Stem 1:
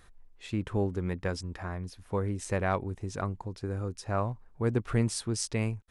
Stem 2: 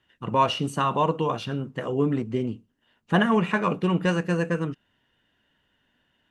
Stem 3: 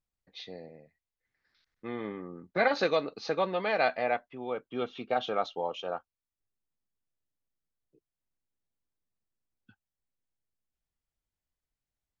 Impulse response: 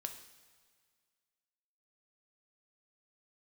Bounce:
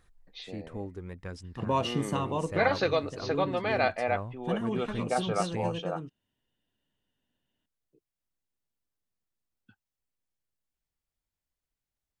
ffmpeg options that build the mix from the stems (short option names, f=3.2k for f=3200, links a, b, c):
-filter_complex "[0:a]aphaser=in_gain=1:out_gain=1:delay=4.5:decay=0.29:speed=0.72:type=triangular,volume=-9dB[a];[1:a]equalizer=f=1.5k:t=o:w=1.5:g=-10,adelay=1350,volume=-2.5dB,afade=t=out:st=2.12:d=0.5:silence=0.398107[b];[2:a]volume=0dB[c];[a][b][c]amix=inputs=3:normalize=0"